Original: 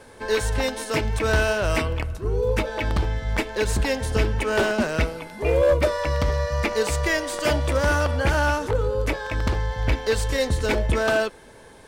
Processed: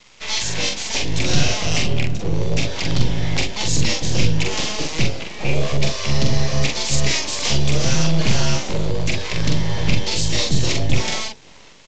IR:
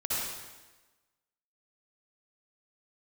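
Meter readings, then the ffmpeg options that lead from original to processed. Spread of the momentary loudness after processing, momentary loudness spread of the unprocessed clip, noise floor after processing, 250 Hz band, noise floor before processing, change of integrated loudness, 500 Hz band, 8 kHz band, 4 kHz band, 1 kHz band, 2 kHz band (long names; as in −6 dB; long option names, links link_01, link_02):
4 LU, 5 LU, −44 dBFS, +4.5 dB, −47 dBFS, +2.0 dB, −5.5 dB, +10.5 dB, +10.5 dB, −3.0 dB, −0.5 dB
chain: -filter_complex "[0:a]acrossover=split=590|1800[link_01][link_02][link_03];[link_01]dynaudnorm=framelen=320:gausssize=5:maxgain=11dB[link_04];[link_03]highshelf=frequency=4100:gain=-6.5[link_05];[link_04][link_02][link_05]amix=inputs=3:normalize=0,acrossover=split=150|3000[link_06][link_07][link_08];[link_07]acompressor=threshold=-26dB:ratio=5[link_09];[link_06][link_09][link_08]amix=inputs=3:normalize=0,bandreject=frequency=50:width_type=h:width=6,bandreject=frequency=100:width_type=h:width=6,bandreject=frequency=150:width_type=h:width=6,bandreject=frequency=200:width_type=h:width=6,bandreject=frequency=250:width_type=h:width=6,bandreject=frequency=300:width_type=h:width=6,bandreject=frequency=350:width_type=h:width=6,bandreject=frequency=400:width_type=h:width=6,bandreject=frequency=450:width_type=h:width=6,bandreject=frequency=500:width_type=h:width=6,aeval=exprs='abs(val(0))':channel_layout=same,aexciter=amount=5.1:drive=5.5:freq=2100,aeval=exprs='sgn(val(0))*max(abs(val(0))-0.00562,0)':channel_layout=same,asplit=2[link_10][link_11];[link_11]adelay=44,volume=-3dB[link_12];[link_10][link_12]amix=inputs=2:normalize=0,aresample=16000,aresample=44100,volume=-1dB"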